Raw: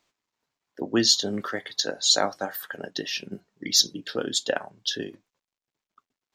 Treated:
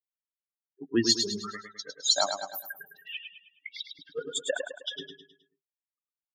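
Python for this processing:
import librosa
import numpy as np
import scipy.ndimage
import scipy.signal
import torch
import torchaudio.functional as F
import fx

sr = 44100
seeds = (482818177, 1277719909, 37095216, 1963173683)

y = fx.bin_expand(x, sr, power=3.0)
y = fx.ellip_bandpass(y, sr, low_hz=1000.0, high_hz=3400.0, order=3, stop_db=40, at=(2.97, 3.99))
y = fx.echo_feedback(y, sr, ms=105, feedback_pct=43, wet_db=-6.5)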